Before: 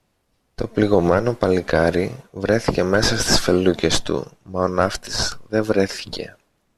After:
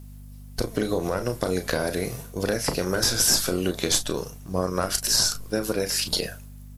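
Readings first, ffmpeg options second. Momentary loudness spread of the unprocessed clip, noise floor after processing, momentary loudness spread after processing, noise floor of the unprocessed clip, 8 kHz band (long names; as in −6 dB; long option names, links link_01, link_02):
11 LU, −42 dBFS, 11 LU, −68 dBFS, +3.5 dB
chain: -filter_complex "[0:a]aemphasis=mode=production:type=50fm,acompressor=threshold=-24dB:ratio=6,aeval=exprs='val(0)+0.00794*(sin(2*PI*50*n/s)+sin(2*PI*2*50*n/s)/2+sin(2*PI*3*50*n/s)/3+sin(2*PI*4*50*n/s)/4+sin(2*PI*5*50*n/s)/5)':channel_layout=same,highshelf=frequency=7100:gain=9,asplit=2[link_01][link_02];[link_02]aecho=0:1:33|43:0.335|0.15[link_03];[link_01][link_03]amix=inputs=2:normalize=0,volume=1.5dB"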